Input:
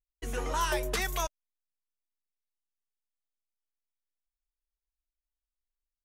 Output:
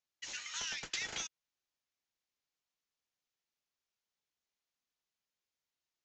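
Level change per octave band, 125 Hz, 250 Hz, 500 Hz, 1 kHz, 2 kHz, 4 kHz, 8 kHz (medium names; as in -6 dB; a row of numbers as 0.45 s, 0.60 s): -22.5 dB, -18.5 dB, -23.0 dB, -20.0 dB, -6.5 dB, -1.5 dB, -2.5 dB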